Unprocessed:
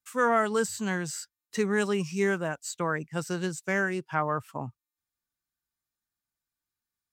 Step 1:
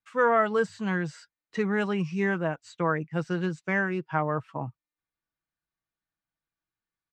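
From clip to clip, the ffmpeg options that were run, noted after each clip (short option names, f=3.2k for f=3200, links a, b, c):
-af "lowpass=2.8k,aecho=1:1:6.2:0.4,volume=1dB"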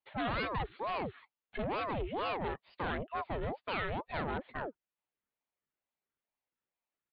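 -af "aresample=8000,asoftclip=type=tanh:threshold=-29dB,aresample=44100,aeval=exprs='val(0)*sin(2*PI*560*n/s+560*0.65/2.2*sin(2*PI*2.2*n/s))':c=same"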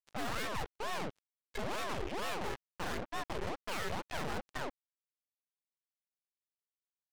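-af "aeval=exprs='(tanh(178*val(0)+0.6)-tanh(0.6))/178':c=same,acrusher=bits=6:mix=0:aa=0.5,volume=9dB"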